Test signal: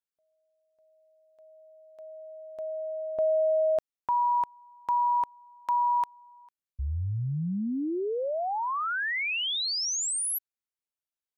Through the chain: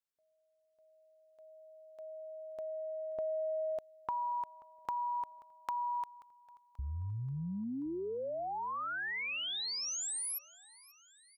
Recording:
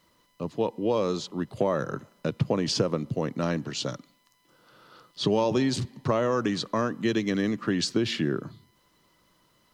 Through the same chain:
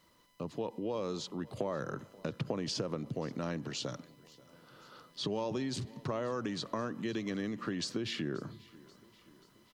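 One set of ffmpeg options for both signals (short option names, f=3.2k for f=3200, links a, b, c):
-filter_complex "[0:a]acompressor=threshold=-42dB:ratio=2:attack=25:release=50:detection=peak,asplit=2[a][b];[b]aecho=0:1:533|1066|1599|2132:0.075|0.0442|0.0261|0.0154[c];[a][c]amix=inputs=2:normalize=0,volume=-2dB"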